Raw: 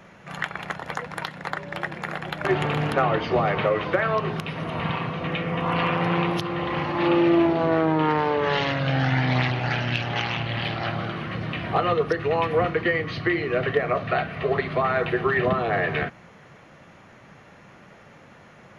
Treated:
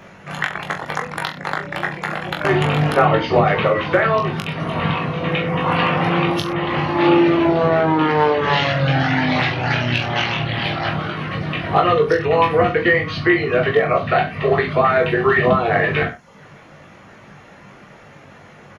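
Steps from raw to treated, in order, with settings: reverb removal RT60 0.59 s; reverse bouncing-ball echo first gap 20 ms, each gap 1.1×, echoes 5; trim +5.5 dB

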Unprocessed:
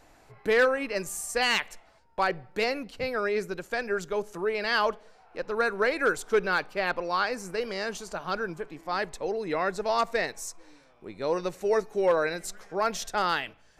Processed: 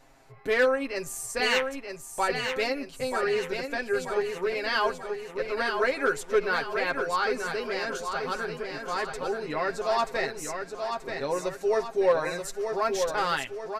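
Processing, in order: comb 7.5 ms, depth 71%; feedback delay 932 ms, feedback 48%, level -6 dB; trim -2.5 dB

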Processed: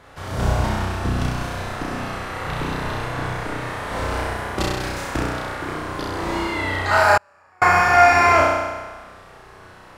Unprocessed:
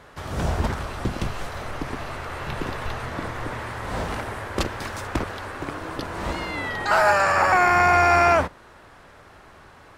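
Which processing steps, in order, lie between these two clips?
flutter echo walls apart 5.6 m, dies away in 1.3 s; 7.17–7.62 s: inverted gate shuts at -8 dBFS, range -39 dB; trim -1 dB

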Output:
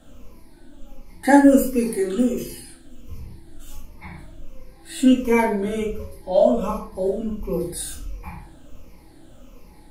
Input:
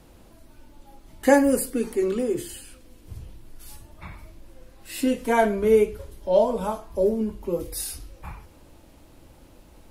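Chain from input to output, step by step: drifting ripple filter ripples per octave 0.83, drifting -1.4 Hz, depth 12 dB; 1.71–2.38 s: treble shelf 4 kHz -> 7.7 kHz +8 dB; simulated room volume 260 m³, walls furnished, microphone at 2.1 m; trim -3.5 dB

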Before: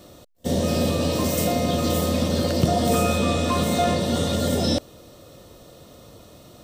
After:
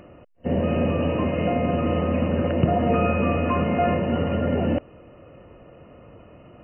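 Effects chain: upward compressor, threshold -44 dBFS; brick-wall FIR low-pass 3 kHz

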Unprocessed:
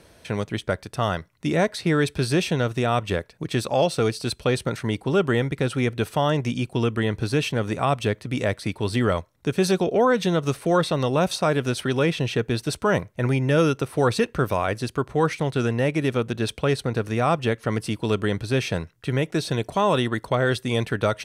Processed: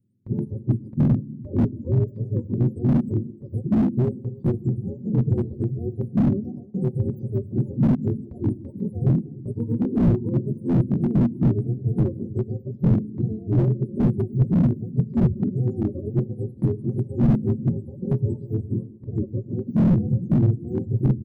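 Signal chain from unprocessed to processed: spectrum inverted on a logarithmic axis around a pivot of 420 Hz; elliptic band-stop 270–9400 Hz, stop band 80 dB; gate with hold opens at -39 dBFS; rippled EQ curve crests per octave 0.96, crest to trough 7 dB; in parallel at -2 dB: peak limiter -20.5 dBFS, peak gain reduction 10 dB; on the sum: treble shelf 3.5 kHz -6.5 dB; comb 5.4 ms, depth 64%; delay 299 ms -20.5 dB; on a send at -16 dB: reverberation, pre-delay 3 ms; on the sum: slew-rate limiter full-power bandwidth 23 Hz; trim +4 dB

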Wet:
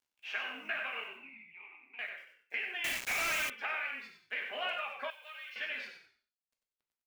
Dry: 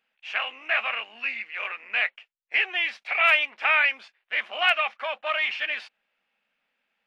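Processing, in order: reverb removal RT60 0.65 s; compression 8:1, threshold -30 dBFS, peak gain reduction 15 dB; small resonant body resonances 260/420/1600 Hz, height 12 dB, ringing for 70 ms; bit crusher 11-bit; 1.08–1.99 s: vowel filter u; frequency-shifting echo 94 ms, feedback 31%, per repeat -49 Hz, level -6.5 dB; gated-style reverb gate 180 ms falling, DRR 2.5 dB; 2.84–3.50 s: companded quantiser 2-bit; 5.10–5.56 s: differentiator; trim -6.5 dB

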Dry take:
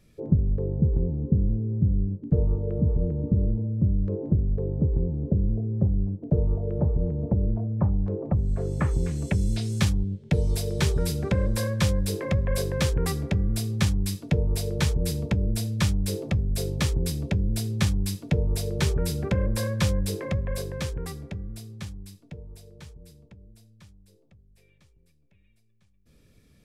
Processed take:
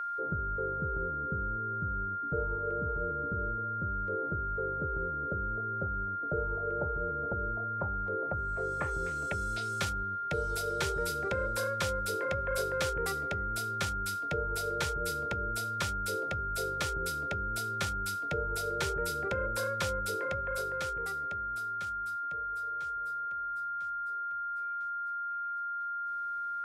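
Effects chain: whistle 1.4 kHz -28 dBFS; resonant low shelf 310 Hz -9.5 dB, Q 1.5; trim -5.5 dB

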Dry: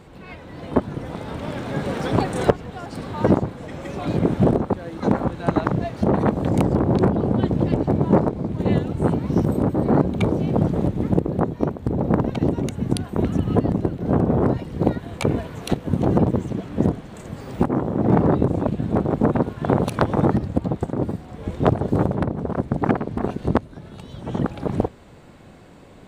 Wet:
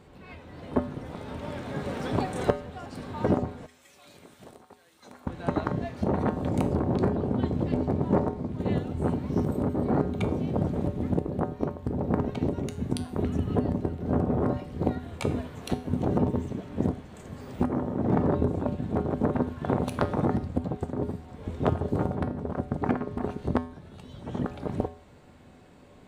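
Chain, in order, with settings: 3.66–5.27 s: pre-emphasis filter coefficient 0.97; feedback comb 83 Hz, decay 0.52 s, harmonics odd, mix 70%; trim +1.5 dB

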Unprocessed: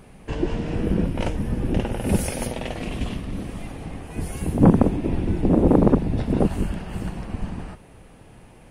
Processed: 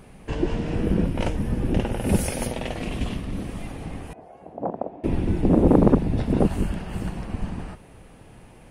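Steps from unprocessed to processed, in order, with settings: 4.13–5.04 s: band-pass filter 680 Hz, Q 3.7

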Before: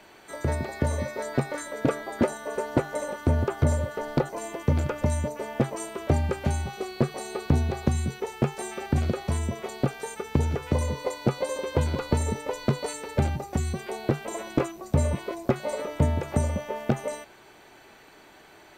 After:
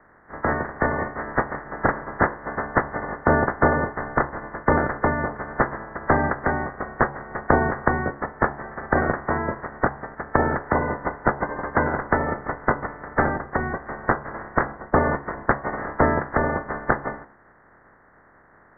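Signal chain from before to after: spectral peaks clipped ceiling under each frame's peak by 28 dB; steep low-pass 1.9 kHz 96 dB/octave; de-hum 70.43 Hz, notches 16; trim +5 dB

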